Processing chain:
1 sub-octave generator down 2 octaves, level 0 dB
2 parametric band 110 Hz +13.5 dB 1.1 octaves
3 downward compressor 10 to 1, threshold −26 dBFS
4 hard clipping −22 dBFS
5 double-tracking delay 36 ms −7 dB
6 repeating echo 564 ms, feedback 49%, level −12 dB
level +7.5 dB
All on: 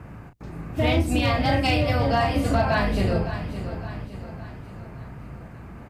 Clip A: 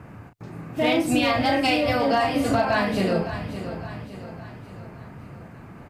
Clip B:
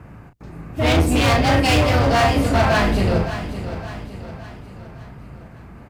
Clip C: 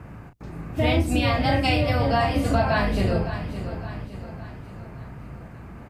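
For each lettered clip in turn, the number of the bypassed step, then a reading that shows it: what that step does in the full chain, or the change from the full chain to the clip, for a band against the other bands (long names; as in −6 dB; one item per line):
1, 125 Hz band −9.0 dB
3, average gain reduction 4.0 dB
4, distortion level −25 dB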